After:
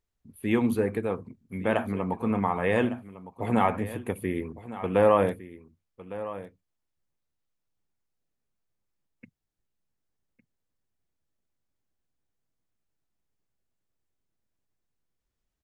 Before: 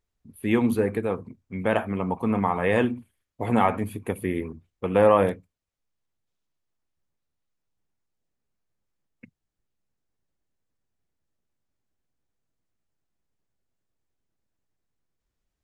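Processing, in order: delay 1157 ms -15 dB; trim -2.5 dB

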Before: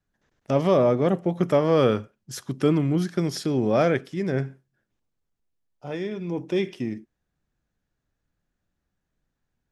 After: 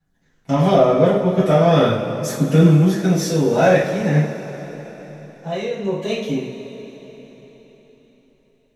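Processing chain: gliding tape speed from 101% -> 121%; phaser 0.43 Hz, delay 2.2 ms, feedback 40%; two-slope reverb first 0.42 s, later 4.4 s, from -17 dB, DRR -10 dB; trim -4 dB

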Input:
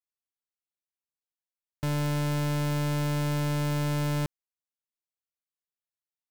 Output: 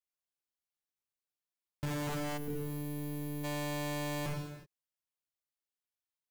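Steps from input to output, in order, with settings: 2.07–2.48 s: bass shelf 100 Hz +11.5 dB; gated-style reverb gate 410 ms falling, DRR -1.5 dB; wavefolder -25 dBFS; 2.38–3.44 s: time-frequency box 530–10000 Hz -14 dB; trim -6 dB

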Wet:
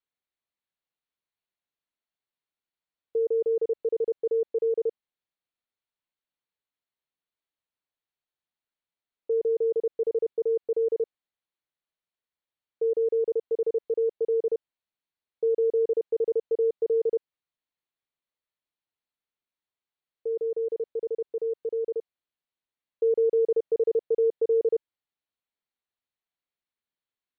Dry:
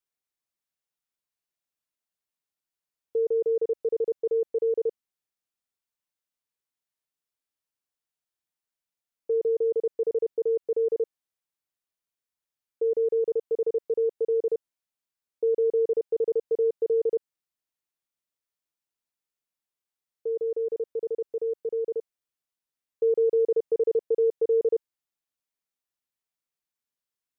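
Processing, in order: Chebyshev low-pass 4.5 kHz, order 10

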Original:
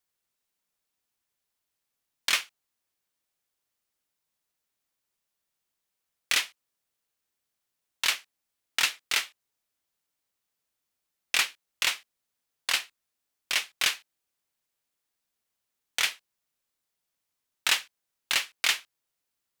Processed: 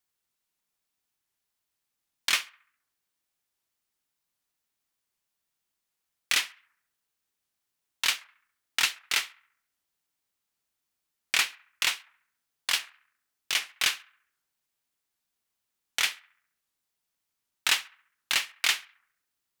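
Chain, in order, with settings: peaking EQ 540 Hz -4 dB 0.51 oct; band-passed feedback delay 68 ms, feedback 52%, band-pass 1.4 kHz, level -19.5 dB; warped record 78 rpm, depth 160 cents

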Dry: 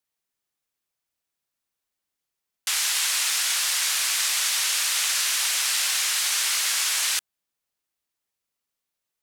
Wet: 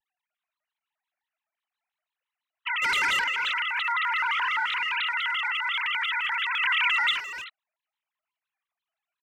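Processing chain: formants replaced by sine waves; 2.82–3.24 s: waveshaping leveller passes 2; 3.88–4.66 s: high-order bell 1.1 kHz +10.5 dB; peak limiter -15.5 dBFS, peak gain reduction 8 dB; 6.59–7.11 s: tilt shelf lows -6.5 dB, about 800 Hz; speakerphone echo 300 ms, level -10 dB; vibrato with a chosen wave square 5.8 Hz, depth 250 cents; trim -4 dB

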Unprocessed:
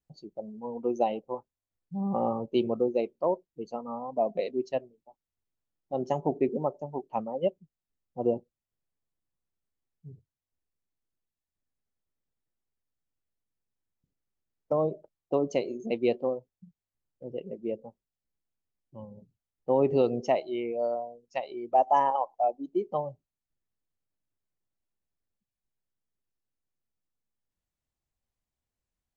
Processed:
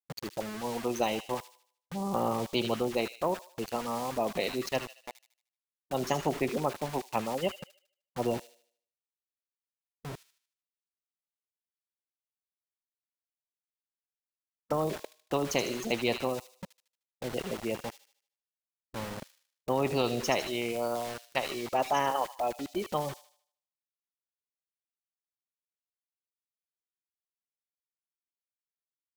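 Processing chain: small samples zeroed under -48.5 dBFS; feedback echo behind a high-pass 76 ms, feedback 40%, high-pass 3.5 kHz, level -7 dB; spectrum-flattening compressor 2:1

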